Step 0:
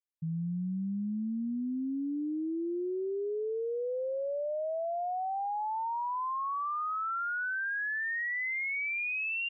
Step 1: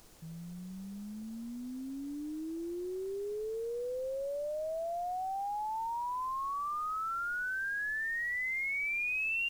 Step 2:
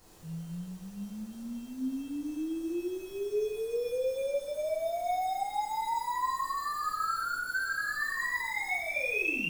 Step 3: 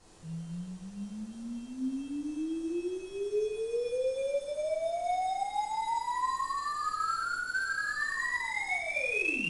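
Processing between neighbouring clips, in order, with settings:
added noise brown -47 dBFS; tone controls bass -11 dB, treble +15 dB; gain -2.5 dB
in parallel at -7 dB: sample-and-hold 15×; on the sum: two-slope reverb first 0.77 s, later 2.1 s, DRR -9.5 dB; gain -8.5 dB
IMA ADPCM 88 kbps 22050 Hz

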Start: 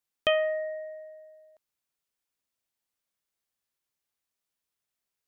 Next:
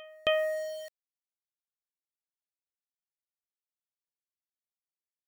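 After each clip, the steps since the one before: sample gate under -38 dBFS; pre-echo 0.276 s -23 dB; gain -2.5 dB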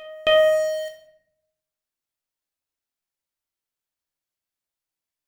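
on a send at -1 dB: reverb RT60 0.75 s, pre-delay 3 ms; on the sum: dynamic EQ 6700 Hz, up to +6 dB, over -46 dBFS, Q 0.72; gain +5 dB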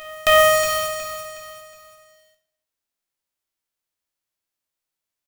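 spectral whitening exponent 0.3; on a send: feedback echo 0.366 s, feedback 39%, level -9 dB; on the sum: gain +2.5 dB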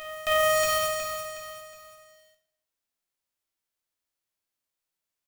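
limiter -14 dBFS, peak gain reduction 11.5 dB; gain -2 dB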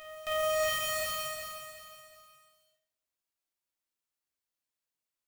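non-linear reverb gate 0.45 s rising, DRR -2.5 dB; gain -9 dB

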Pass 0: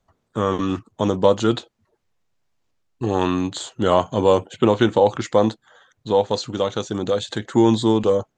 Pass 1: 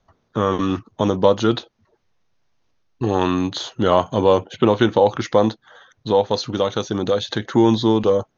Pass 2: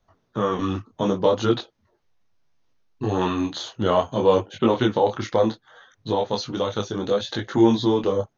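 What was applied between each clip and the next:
Chebyshev low-pass 6500 Hz, order 8; in parallel at -1 dB: compressor, threshold -27 dBFS, peak gain reduction 15.5 dB
detuned doubles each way 23 cents

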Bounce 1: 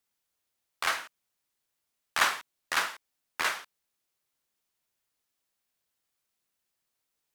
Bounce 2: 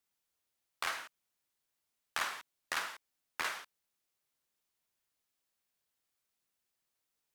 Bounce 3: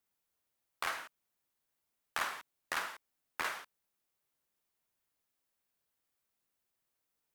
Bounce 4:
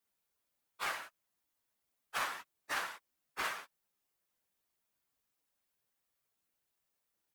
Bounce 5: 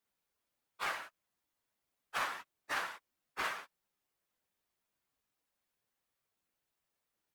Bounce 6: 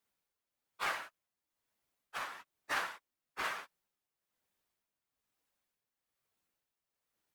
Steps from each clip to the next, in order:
compressor 6:1, threshold -29 dBFS, peak gain reduction 10 dB; gain -3 dB
bell 4900 Hz -5 dB 2.6 oct; gain +2 dB
phase scrambler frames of 50 ms
high shelf 5300 Hz -6 dB; gain +1 dB
tremolo 1.1 Hz, depth 57%; gain +1.5 dB

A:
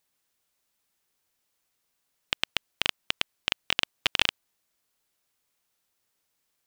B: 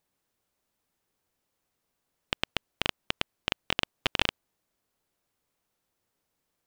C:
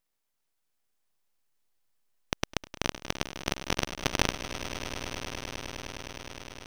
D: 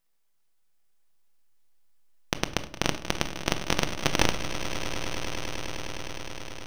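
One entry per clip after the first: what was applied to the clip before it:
tilt shelf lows +5.5 dB, about 1200 Hz
full-wave rectifier; swelling echo 0.103 s, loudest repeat 8, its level -15 dB
shoebox room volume 650 m³, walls furnished, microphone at 0.72 m; gain +3 dB

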